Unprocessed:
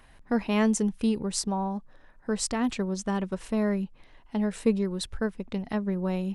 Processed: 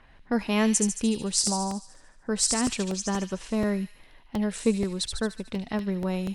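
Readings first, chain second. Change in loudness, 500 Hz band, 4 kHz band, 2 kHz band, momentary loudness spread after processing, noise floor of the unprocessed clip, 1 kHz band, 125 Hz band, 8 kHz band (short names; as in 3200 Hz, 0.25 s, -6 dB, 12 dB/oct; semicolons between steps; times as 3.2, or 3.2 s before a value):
+2.0 dB, 0.0 dB, +6.5 dB, +2.0 dB, 9 LU, -56 dBFS, +0.5 dB, 0.0 dB, +8.5 dB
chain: low-pass opened by the level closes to 2600 Hz, open at -23 dBFS; high shelf 4100 Hz +9.5 dB; on a send: thin delay 74 ms, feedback 59%, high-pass 3100 Hz, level -4 dB; on the sum: crackling interface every 0.24 s, samples 64, repeat, from 0.99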